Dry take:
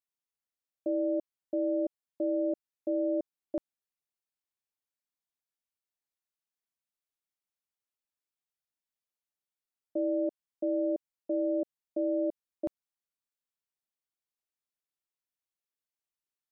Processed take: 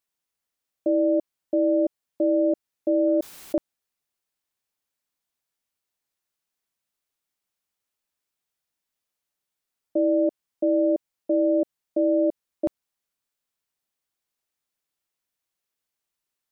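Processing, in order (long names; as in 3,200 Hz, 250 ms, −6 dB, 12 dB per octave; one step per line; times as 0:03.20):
0:03.07–0:03.56: background raised ahead of every attack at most 22 dB per second
level +8.5 dB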